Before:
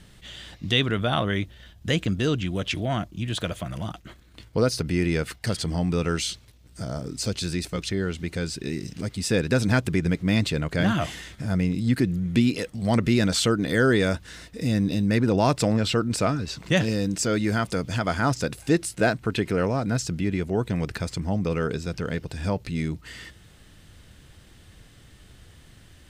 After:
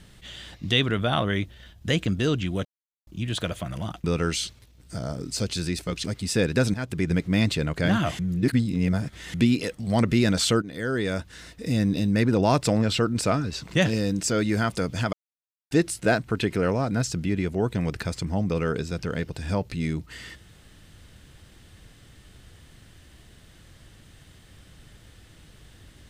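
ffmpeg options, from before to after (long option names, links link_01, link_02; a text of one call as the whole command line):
ffmpeg -i in.wav -filter_complex "[0:a]asplit=11[link_01][link_02][link_03][link_04][link_05][link_06][link_07][link_08][link_09][link_10][link_11];[link_01]atrim=end=2.65,asetpts=PTS-STARTPTS,afade=type=out:start_time=2.646:duration=0.004:curve=hsin[link_12];[link_02]atrim=start=2.65:end=3.07,asetpts=PTS-STARTPTS,volume=0[link_13];[link_03]atrim=start=3.07:end=4.042,asetpts=PTS-STARTPTS,afade=type=in:duration=0.004:curve=hsin[link_14];[link_04]atrim=start=5.898:end=7.902[link_15];[link_05]atrim=start=8.988:end=9.69,asetpts=PTS-STARTPTS,afade=type=out:start_time=0.698:duration=0.004:curve=hsin:silence=0.158489[link_16];[link_06]atrim=start=9.69:end=11.142,asetpts=PTS-STARTPTS,afade=type=in:duration=0.37:silence=0.158489[link_17];[link_07]atrim=start=11.138:end=12.292,asetpts=PTS-STARTPTS,areverse[link_18];[link_08]atrim=start=12.288:end=13.57,asetpts=PTS-STARTPTS,afade=type=out:start_time=1.278:duration=0.004:curve=hsin:silence=0.199526[link_19];[link_09]atrim=start=13.57:end=18.08,asetpts=PTS-STARTPTS,afade=type=in:duration=1.02:silence=0.199526,afade=type=out:start_time=4.506:duration=0.004:curve=hsin[link_20];[link_10]atrim=start=18.08:end=18.66,asetpts=PTS-STARTPTS,volume=0[link_21];[link_11]atrim=start=18.66,asetpts=PTS-STARTPTS,afade=type=in:duration=0.004:curve=hsin[link_22];[link_12][link_13][link_14]concat=n=3:v=0:a=1[link_23];[link_23][link_15]acrossfade=duration=0.004:curve1=hsin:curve2=hsin[link_24];[link_16][link_17]concat=n=2:v=0:a=1[link_25];[link_24][link_25]acrossfade=duration=0.004:curve1=hsin:curve2=hsin[link_26];[link_26][link_18]acrossfade=duration=0.004:curve1=hsin:curve2=hsin[link_27];[link_19][link_20][link_21][link_22]concat=n=4:v=0:a=1[link_28];[link_27][link_28]acrossfade=duration=0.004:curve1=hsin:curve2=hsin" out.wav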